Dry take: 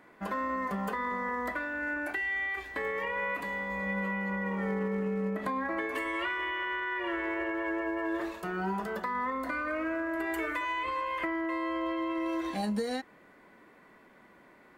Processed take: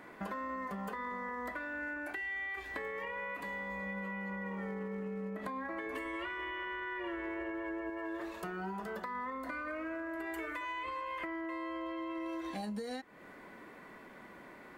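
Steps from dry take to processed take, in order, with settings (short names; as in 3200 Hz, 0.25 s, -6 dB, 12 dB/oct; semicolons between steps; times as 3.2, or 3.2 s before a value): 5.86–7.9 low shelf 360 Hz +7.5 dB; compressor 4:1, threshold -45 dBFS, peak gain reduction 15 dB; gain +5 dB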